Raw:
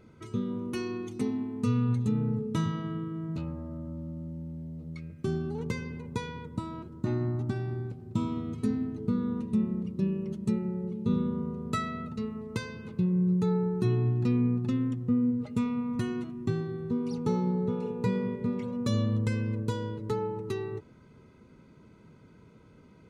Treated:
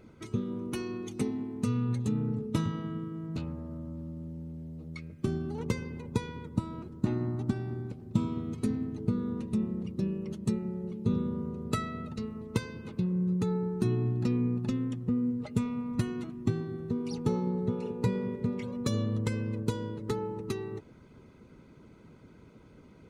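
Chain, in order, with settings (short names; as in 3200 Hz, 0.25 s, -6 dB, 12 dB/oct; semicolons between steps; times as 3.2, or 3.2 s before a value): harmonic-percussive split percussive +9 dB; gain -3.5 dB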